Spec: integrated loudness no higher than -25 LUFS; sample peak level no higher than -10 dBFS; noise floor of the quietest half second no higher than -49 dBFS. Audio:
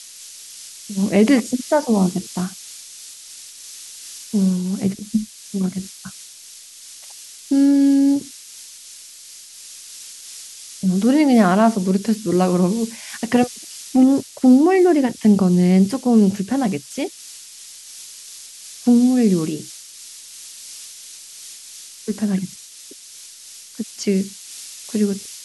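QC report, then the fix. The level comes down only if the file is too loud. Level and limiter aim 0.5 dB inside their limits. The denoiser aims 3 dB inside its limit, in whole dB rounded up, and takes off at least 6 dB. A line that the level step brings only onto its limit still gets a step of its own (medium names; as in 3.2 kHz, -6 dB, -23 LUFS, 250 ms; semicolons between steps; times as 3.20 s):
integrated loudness -18.0 LUFS: fail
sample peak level -3.5 dBFS: fail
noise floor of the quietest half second -41 dBFS: fail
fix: noise reduction 6 dB, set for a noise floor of -41 dBFS; trim -7.5 dB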